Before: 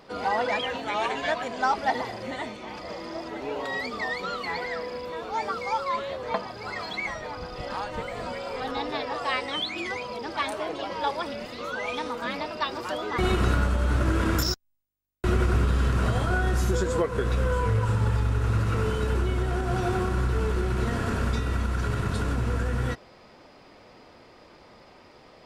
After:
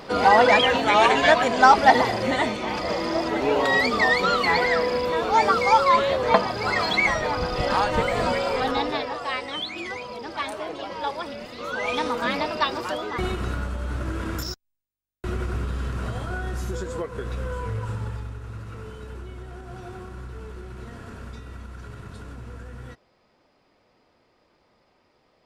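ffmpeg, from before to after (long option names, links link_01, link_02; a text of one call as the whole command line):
ffmpeg -i in.wav -af "volume=17.5dB,afade=type=out:start_time=8.29:duration=0.9:silence=0.266073,afade=type=in:start_time=11.54:duration=0.47:silence=0.446684,afade=type=out:start_time=12.55:duration=0.81:silence=0.266073,afade=type=out:start_time=17.91:duration=0.5:silence=0.446684" out.wav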